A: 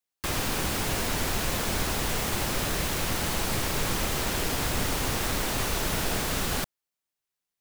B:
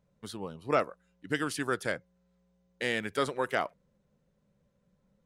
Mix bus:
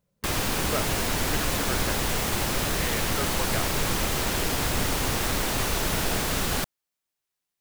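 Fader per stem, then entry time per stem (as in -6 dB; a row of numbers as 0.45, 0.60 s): +2.0, -4.0 dB; 0.00, 0.00 s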